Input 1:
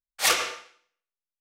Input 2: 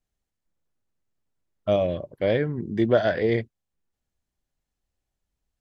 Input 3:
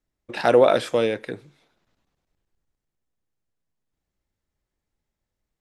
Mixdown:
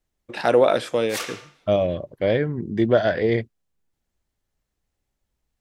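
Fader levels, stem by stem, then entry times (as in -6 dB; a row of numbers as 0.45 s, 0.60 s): -8.5 dB, +2.0 dB, -1.0 dB; 0.90 s, 0.00 s, 0.00 s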